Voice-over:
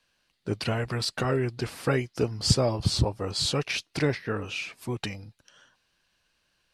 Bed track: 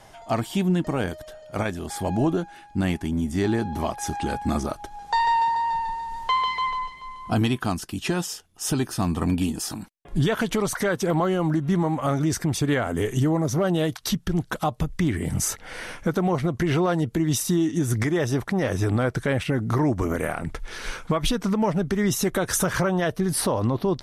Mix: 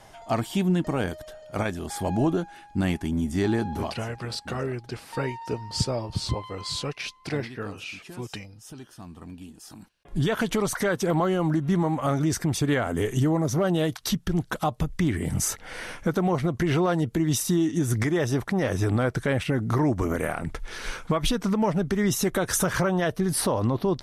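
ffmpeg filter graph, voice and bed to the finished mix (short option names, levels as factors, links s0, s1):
-filter_complex "[0:a]adelay=3300,volume=0.631[s0];[1:a]volume=6.68,afade=t=out:st=3.7:d=0.35:silence=0.133352,afade=t=in:st=9.6:d=0.8:silence=0.133352[s1];[s0][s1]amix=inputs=2:normalize=0"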